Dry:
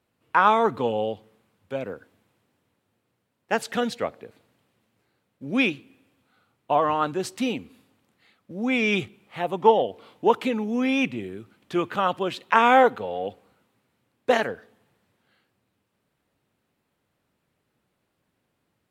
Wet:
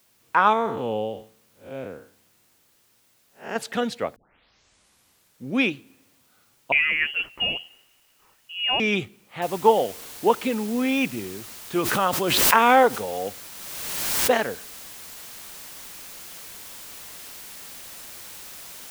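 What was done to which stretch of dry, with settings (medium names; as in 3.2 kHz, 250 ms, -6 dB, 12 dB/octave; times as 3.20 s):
0.53–3.56 s: spectral blur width 163 ms
4.16 s: tape start 1.38 s
6.72–8.80 s: frequency inversion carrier 3.1 kHz
9.42 s: noise floor step -63 dB -41 dB
11.78–14.30 s: swell ahead of each attack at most 27 dB/s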